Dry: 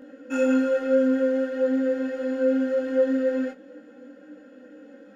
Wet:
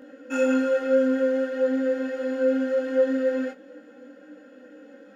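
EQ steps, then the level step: bass shelf 280 Hz -7 dB; +2.0 dB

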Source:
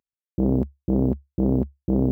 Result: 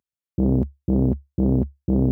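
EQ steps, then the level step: high-pass 78 Hz; bass shelf 120 Hz +12 dB; -1.5 dB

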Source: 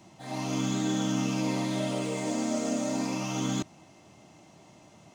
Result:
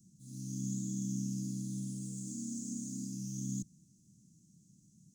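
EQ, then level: elliptic band-stop 200–6700 Hz, stop band 80 dB; peaking EQ 87 Hz -7.5 dB 0.64 oct; peaking EQ 940 Hz -8 dB 0.35 oct; -3.0 dB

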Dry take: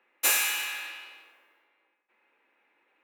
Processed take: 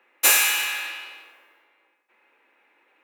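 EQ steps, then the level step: high-pass 210 Hz; +7.0 dB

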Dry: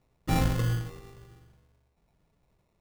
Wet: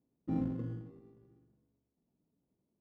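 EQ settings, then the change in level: band-pass filter 260 Hz, Q 2.8; 0.0 dB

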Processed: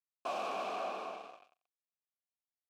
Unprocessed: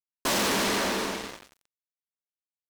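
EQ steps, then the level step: dynamic bell 2.7 kHz, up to -3 dB, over -43 dBFS, Q 0.84; vowel filter a; +1.0 dB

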